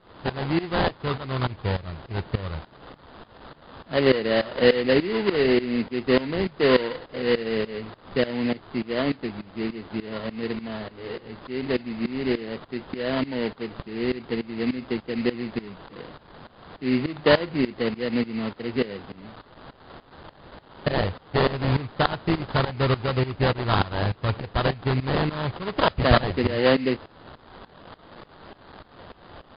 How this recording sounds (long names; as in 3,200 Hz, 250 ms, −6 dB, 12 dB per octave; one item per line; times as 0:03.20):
a quantiser's noise floor 8 bits, dither triangular
tremolo saw up 3.4 Hz, depth 90%
aliases and images of a low sample rate 2,400 Hz, jitter 20%
MP3